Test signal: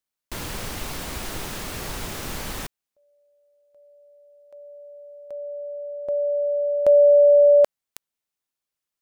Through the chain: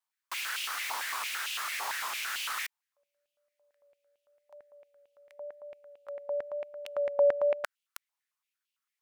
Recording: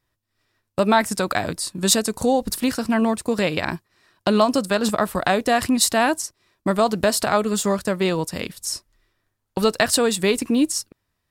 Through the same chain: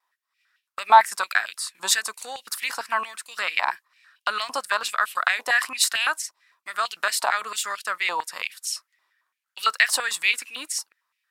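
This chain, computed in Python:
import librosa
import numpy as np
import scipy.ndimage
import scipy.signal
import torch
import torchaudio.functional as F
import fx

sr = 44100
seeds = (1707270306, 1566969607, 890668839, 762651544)

y = fx.vibrato(x, sr, rate_hz=0.94, depth_cents=23.0)
y = fx.filter_held_highpass(y, sr, hz=8.9, low_hz=930.0, high_hz=2800.0)
y = y * 10.0 ** (-3.5 / 20.0)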